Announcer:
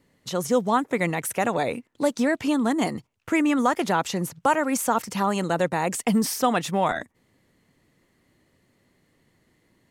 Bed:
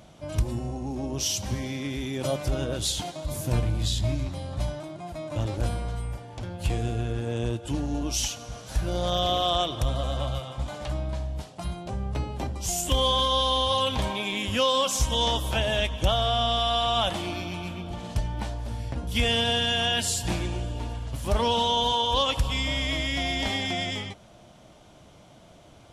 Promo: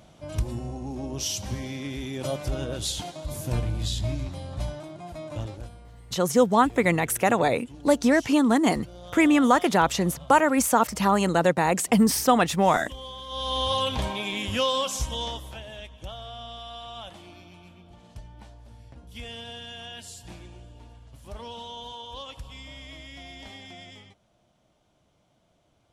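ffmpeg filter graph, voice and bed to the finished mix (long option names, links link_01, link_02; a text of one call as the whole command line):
ffmpeg -i stem1.wav -i stem2.wav -filter_complex "[0:a]adelay=5850,volume=2.5dB[link_01];[1:a]volume=13.5dB,afade=type=out:start_time=5.28:duration=0.41:silence=0.188365,afade=type=in:start_time=13.26:duration=0.4:silence=0.16788,afade=type=out:start_time=14.6:duration=1.01:silence=0.188365[link_02];[link_01][link_02]amix=inputs=2:normalize=0" out.wav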